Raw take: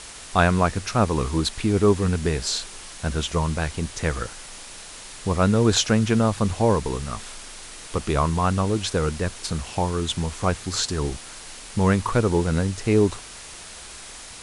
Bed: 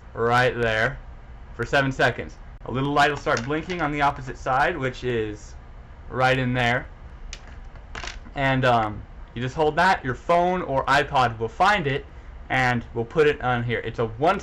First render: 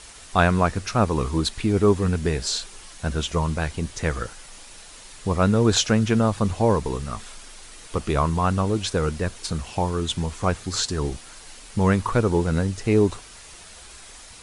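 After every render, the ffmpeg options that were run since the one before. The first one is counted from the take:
-af "afftdn=nr=6:nf=-41"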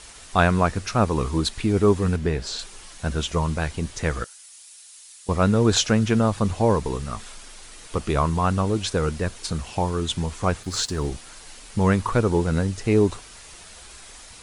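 -filter_complex "[0:a]asettb=1/sr,asplit=3[s0][s1][s2];[s0]atrim=end=2.164[s3];[s1]atrim=start=2.16:end=2.59,asetpts=PTS-STARTPTS,afade=t=in:d=0.004:c=qsin,afade=t=out:st=0.426:d=0.004:c=qsin,lowpass=f=2900:p=1[s4];[s2]atrim=start=2.586[s5];[s3][s4]acrossfade=d=0.004:c1=hsin:c2=qsin[s6];[s6][s5]acrossfade=d=0.004:c1=qsin:c2=hsin,asettb=1/sr,asplit=3[s7][s8][s9];[s7]atrim=end=4.244[s10];[s8]atrim=start=4.24:end=5.29,asetpts=PTS-STARTPTS,afade=t=in:d=0.004:c=qsin,afade=t=out:st=1.046:d=0.004:c=qsin,aderivative[s11];[s9]atrim=start=5.286[s12];[s10][s11]acrossfade=d=0.004:c1=hsin:c2=qsin[s13];[s13][s12]acrossfade=d=0.004:c1=qsin:c2=hsin,asplit=3[s14][s15][s16];[s14]afade=t=out:st=10.62:d=0.02[s17];[s15]aeval=exprs='sgn(val(0))*max(abs(val(0))-0.00473,0)':c=same,afade=t=in:st=10.62:d=0.02,afade=t=out:st=11.06:d=0.02[s18];[s16]afade=t=in:st=11.06:d=0.02[s19];[s17][s18][s19]amix=inputs=3:normalize=0"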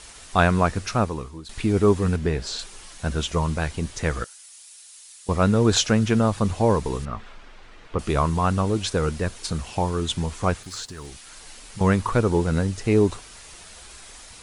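-filter_complex "[0:a]asettb=1/sr,asplit=3[s0][s1][s2];[s0]atrim=end=7.054[s3];[s1]atrim=start=7.05:end=7.99,asetpts=PTS-STARTPTS,afade=t=in:d=0.004:c=qsin,afade=t=out:st=0.936:d=0.004:c=qsin,lowpass=2400[s4];[s2]atrim=start=7.986[s5];[s3][s4]acrossfade=d=0.004:c1=hsin:c2=qsin[s6];[s6][s5]acrossfade=d=0.004:c1=qsin:c2=hsin,asettb=1/sr,asplit=3[s7][s8][s9];[s7]atrim=end=10.544[s10];[s8]atrim=start=10.54:end=11.81,asetpts=PTS-STARTPTS,afade=t=in:d=0.004:c=qsin,afade=t=out:st=1.266:d=0.004:c=qsin,acrossover=split=1200|3500|7300[s11][s12][s13][s14];[s11]acompressor=threshold=0.00891:ratio=3[s15];[s12]acompressor=threshold=0.00708:ratio=3[s16];[s13]acompressor=threshold=0.00794:ratio=3[s17];[s14]acompressor=threshold=0.00631:ratio=3[s18];[s15][s16][s17][s18]amix=inputs=4:normalize=0[s19];[s9]atrim=start=11.806[s20];[s10][s19]acrossfade=d=0.004:c1=hsin:c2=qsin[s21];[s21][s20]acrossfade=d=0.004:c1=qsin:c2=hsin,asplit=2[s22][s23];[s22]atrim=end=1.49,asetpts=PTS-STARTPTS,afade=t=out:st=0.94:d=0.55:c=qua:silence=0.133352[s24];[s23]atrim=start=1.49,asetpts=PTS-STARTPTS,afade=t=in:d=0.004:c=hsin:silence=0.133352[s25];[s24][s25]concat=n=2:v=0:a=1"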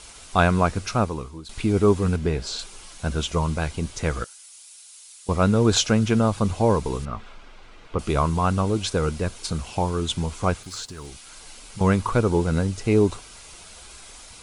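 -af "bandreject=f=1800:w=8.4"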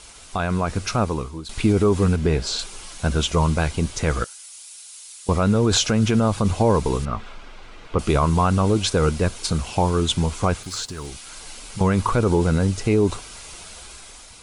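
-af "alimiter=limit=0.2:level=0:latency=1:release=40,dynaudnorm=f=210:g=7:m=1.78"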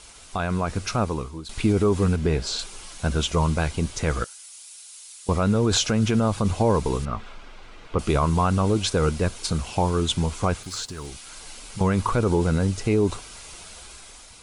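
-af "volume=0.75"

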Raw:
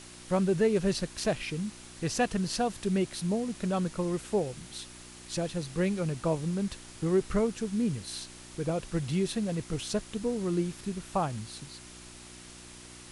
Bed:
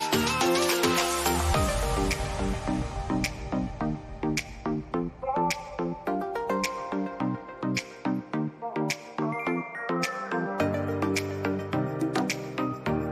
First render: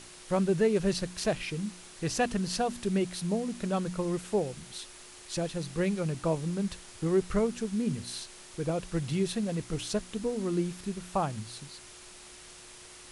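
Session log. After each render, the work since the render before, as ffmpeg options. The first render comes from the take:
-af "bandreject=f=60:t=h:w=4,bandreject=f=120:t=h:w=4,bandreject=f=180:t=h:w=4,bandreject=f=240:t=h:w=4,bandreject=f=300:t=h:w=4"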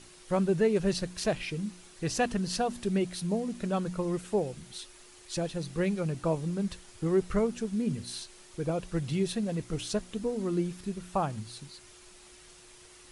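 -af "afftdn=nr=6:nf=-50"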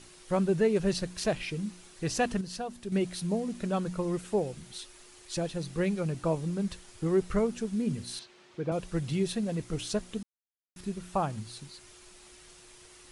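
-filter_complex "[0:a]asettb=1/sr,asplit=3[s0][s1][s2];[s0]atrim=end=8.194[s3];[s1]atrim=start=8.19:end=8.72,asetpts=PTS-STARTPTS,afade=t=in:d=0.004:c=qsin,afade=t=out:st=0.526:d=0.004:c=qsin,highpass=130,lowpass=3500[s4];[s2]atrim=start=8.716[s5];[s3][s4]acrossfade=d=0.004:c1=hsin:c2=qsin[s6];[s6][s5]acrossfade=d=0.004:c1=qsin:c2=hsin,asplit=5[s7][s8][s9][s10][s11];[s7]atrim=end=2.412[s12];[s8]atrim=start=2.408:end=2.922,asetpts=PTS-STARTPTS,volume=0.447[s13];[s9]atrim=start=2.918:end=10.23,asetpts=PTS-STARTPTS,afade=t=out:st=7.308:d=0.004:c=hsin[s14];[s10]atrim=start=10.23:end=10.76,asetpts=PTS-STARTPTS,volume=0[s15];[s11]atrim=start=10.76,asetpts=PTS-STARTPTS,afade=t=in:d=0.004:c=hsin[s16];[s12][s13]acrossfade=d=0.004:c1=hsin:c2=hsin[s17];[s14][s15][s16]concat=n=3:v=0:a=1[s18];[s17][s18]acrossfade=d=0.004:c1=hsin:c2=hsin"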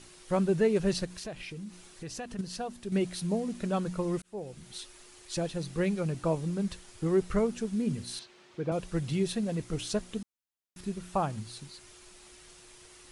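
-filter_complex "[0:a]asettb=1/sr,asplit=3[s0][s1][s2];[s0]atrim=end=1.054[s3];[s1]atrim=start=1.05:end=2.39,asetpts=PTS-STARTPTS,afade=t=in:d=0.004:c=qsin,afade=t=out:st=1.336:d=0.004:c=qsin,acompressor=threshold=0.00891:ratio=2.5:attack=3.2:release=140:knee=1:detection=peak[s4];[s2]atrim=start=2.386[s5];[s3][s4]acrossfade=d=0.004:c1=hsin:c2=qsin[s6];[s6][s5]acrossfade=d=0.004:c1=qsin:c2=hsin,asplit=2[s7][s8];[s7]atrim=end=4.22,asetpts=PTS-STARTPTS,afade=t=out:st=4.216:d=0.004:c=hsin[s9];[s8]atrim=start=4.22,asetpts=PTS-STARTPTS,afade=t=in:d=0.54[s10];[s9][s10]concat=n=2:v=0:a=1"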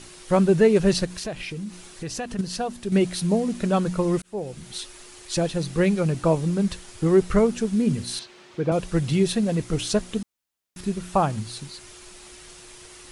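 -af "volume=2.66"

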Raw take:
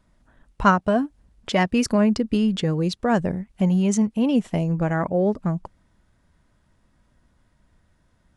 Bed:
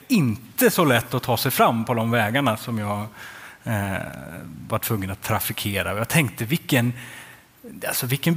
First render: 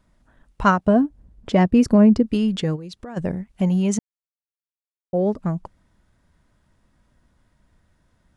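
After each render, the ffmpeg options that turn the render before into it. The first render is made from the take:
-filter_complex "[0:a]asettb=1/sr,asplit=3[s0][s1][s2];[s0]atrim=end=0.874[s3];[s1]atrim=start=0.87:end=2.23,asetpts=PTS-STARTPTS,afade=t=in:d=0.004:c=qsin,afade=t=out:st=1.356:d=0.004:c=qsin,tiltshelf=f=850:g=7[s4];[s2]atrim=start=2.226[s5];[s3][s4]acrossfade=d=0.004:c1=hsin:c2=qsin[s6];[s6][s5]acrossfade=d=0.004:c1=qsin:c2=hsin,asplit=3[s7][s8][s9];[s7]afade=t=out:st=2.75:d=0.02[s10];[s8]acompressor=threshold=0.0251:ratio=10:attack=3.2:release=140:knee=1:detection=peak,afade=t=in:st=2.75:d=0.02,afade=t=out:st=3.16:d=0.02[s11];[s9]afade=t=in:st=3.16:d=0.02[s12];[s10][s11][s12]amix=inputs=3:normalize=0,asplit=3[s13][s14][s15];[s13]atrim=end=3.99,asetpts=PTS-STARTPTS,afade=t=out:st=3.986:d=0.004:c=hsin[s16];[s14]atrim=start=3.99:end=5.13,asetpts=PTS-STARTPTS,volume=0[s17];[s15]atrim=start=5.13,asetpts=PTS-STARTPTS,afade=t=in:d=0.004:c=hsin[s18];[s16][s17][s18]concat=n=3:v=0:a=1"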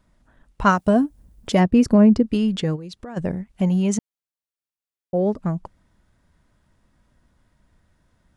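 -filter_complex "[0:a]asplit=3[s0][s1][s2];[s0]afade=t=out:st=0.69:d=0.02[s3];[s1]aemphasis=mode=production:type=75fm,afade=t=in:st=0.69:d=0.02,afade=t=out:st=1.59:d=0.02[s4];[s2]afade=t=in:st=1.59:d=0.02[s5];[s3][s4][s5]amix=inputs=3:normalize=0"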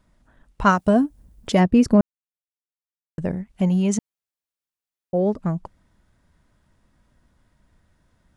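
-filter_complex "[0:a]asplit=3[s0][s1][s2];[s0]atrim=end=2.01,asetpts=PTS-STARTPTS,afade=t=out:st=2.006:d=0.004:c=hsin[s3];[s1]atrim=start=2.01:end=3.18,asetpts=PTS-STARTPTS,volume=0[s4];[s2]atrim=start=3.18,asetpts=PTS-STARTPTS,afade=t=in:d=0.004:c=hsin[s5];[s3][s4][s5]concat=n=3:v=0:a=1"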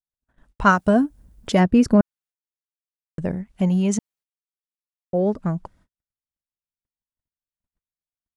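-af "agate=range=0.00562:threshold=0.002:ratio=16:detection=peak,adynamicequalizer=threshold=0.00708:dfrequency=1500:dqfactor=4.7:tfrequency=1500:tqfactor=4.7:attack=5:release=100:ratio=0.375:range=2.5:mode=boostabove:tftype=bell"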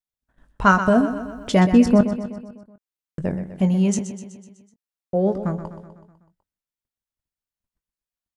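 -filter_complex "[0:a]asplit=2[s0][s1];[s1]adelay=21,volume=0.299[s2];[s0][s2]amix=inputs=2:normalize=0,aecho=1:1:125|250|375|500|625|750:0.282|0.161|0.0916|0.0522|0.0298|0.017"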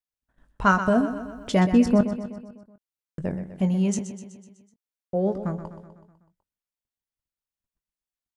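-af "volume=0.631"

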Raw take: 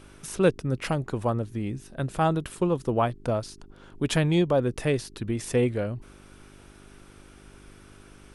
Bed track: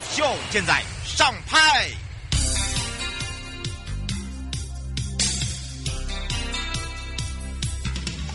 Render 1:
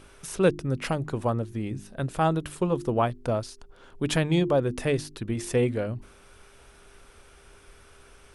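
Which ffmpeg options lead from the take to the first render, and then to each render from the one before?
-af "bandreject=f=50:t=h:w=4,bandreject=f=100:t=h:w=4,bandreject=f=150:t=h:w=4,bandreject=f=200:t=h:w=4,bandreject=f=250:t=h:w=4,bandreject=f=300:t=h:w=4,bandreject=f=350:t=h:w=4"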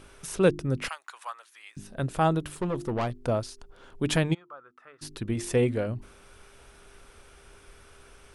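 -filter_complex "[0:a]asettb=1/sr,asplit=3[s0][s1][s2];[s0]atrim=end=0.884[s3];[s1]atrim=start=0.88:end=1.77,asetpts=PTS-STARTPTS,afade=t=in:d=0.004:c=qsin,afade=t=out:st=0.886:d=0.004:c=qsin,highpass=f=1100:w=0.5412,highpass=f=1100:w=1.3066[s4];[s2]atrim=start=1.766[s5];[s3][s4]acrossfade=d=0.004:c1=hsin:c2=qsin[s6];[s6][s5]acrossfade=d=0.004:c1=qsin:c2=hsin,asettb=1/sr,asplit=3[s7][s8][s9];[s7]atrim=end=2.434[s10];[s8]atrim=start=2.43:end=3.22,asetpts=PTS-STARTPTS,afade=t=in:d=0.004:c=qsin,afade=t=out:st=0.786:d=0.004:c=qsin,aeval=exprs='(tanh(15.8*val(0)+0.3)-tanh(0.3))/15.8':c=same[s11];[s9]atrim=start=3.216[s12];[s10][s11]acrossfade=d=0.004:c1=hsin:c2=qsin[s13];[s13][s12]acrossfade=d=0.004:c1=qsin:c2=hsin,asplit=3[s14][s15][s16];[s14]afade=t=out:st=4.33:d=0.02[s17];[s15]bandpass=f=1300:t=q:w=12,afade=t=in:st=4.33:d=0.02,afade=t=out:st=5.01:d=0.02[s18];[s16]afade=t=in:st=5.01:d=0.02[s19];[s17][s18][s19]amix=inputs=3:normalize=0"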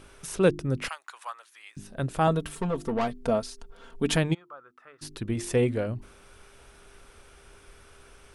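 -filter_complex "[0:a]asettb=1/sr,asplit=3[s0][s1][s2];[s0]atrim=end=2.274[s3];[s1]atrim=start=2.27:end=4.15,asetpts=PTS-STARTPTS,afade=t=in:d=0.004:c=qsin,afade=t=out:st=1.876:d=0.004:c=qsin,aecho=1:1:4.4:0.65,atrim=end_sample=82908[s4];[s2]atrim=start=4.146[s5];[s3][s4]acrossfade=d=0.004:c1=hsin:c2=qsin[s6];[s6][s5]acrossfade=d=0.004:c1=qsin:c2=hsin"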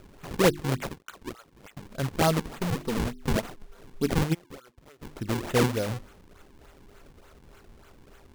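-af "acrusher=samples=40:mix=1:aa=0.000001:lfo=1:lforange=64:lforate=3.4"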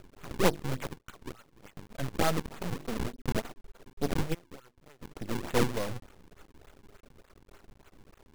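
-af "aeval=exprs='max(val(0),0)':c=same"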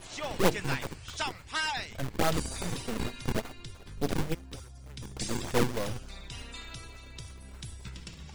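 -filter_complex "[1:a]volume=0.168[s0];[0:a][s0]amix=inputs=2:normalize=0"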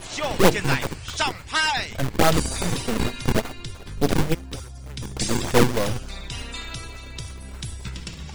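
-af "volume=2.99,alimiter=limit=0.794:level=0:latency=1"

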